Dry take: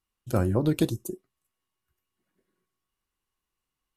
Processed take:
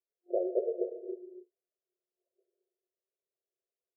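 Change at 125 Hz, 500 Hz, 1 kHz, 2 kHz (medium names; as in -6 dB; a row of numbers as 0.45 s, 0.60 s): under -40 dB, -1.0 dB, no reading, under -40 dB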